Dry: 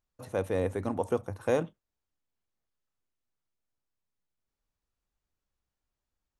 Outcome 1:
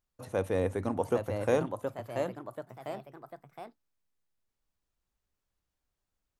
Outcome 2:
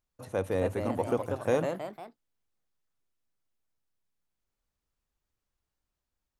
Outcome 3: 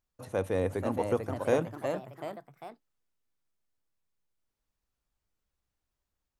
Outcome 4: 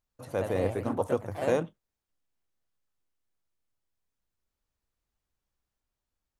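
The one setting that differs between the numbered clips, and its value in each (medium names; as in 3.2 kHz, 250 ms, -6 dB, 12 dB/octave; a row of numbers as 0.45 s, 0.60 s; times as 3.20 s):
ever faster or slower copies, time: 844 ms, 312 ms, 525 ms, 102 ms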